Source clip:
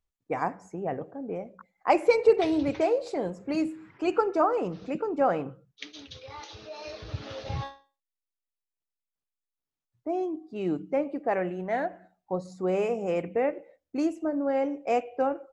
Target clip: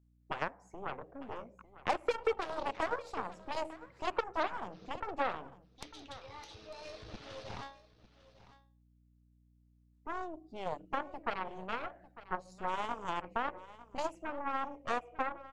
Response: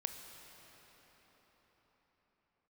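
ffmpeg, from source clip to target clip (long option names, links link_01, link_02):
-filter_complex "[0:a]aeval=exprs='0.355*(cos(1*acos(clip(val(0)/0.355,-1,1)))-cos(1*PI/2))+0.0708*(cos(7*acos(clip(val(0)/0.355,-1,1)))-cos(7*PI/2))+0.0316*(cos(8*acos(clip(val(0)/0.355,-1,1)))-cos(8*PI/2))':channel_layout=same,acrossover=split=480|1400[link_01][link_02][link_03];[link_01]acompressor=threshold=-46dB:ratio=4[link_04];[link_02]acompressor=threshold=-33dB:ratio=4[link_05];[link_03]acompressor=threshold=-46dB:ratio=4[link_06];[link_04][link_05][link_06]amix=inputs=3:normalize=0,aeval=exprs='val(0)+0.000398*(sin(2*PI*60*n/s)+sin(2*PI*2*60*n/s)/2+sin(2*PI*3*60*n/s)/3+sin(2*PI*4*60*n/s)/4+sin(2*PI*5*60*n/s)/5)':channel_layout=same,asplit=2[link_07][link_08];[link_08]aecho=0:1:900:0.141[link_09];[link_07][link_09]amix=inputs=2:normalize=0,volume=1dB"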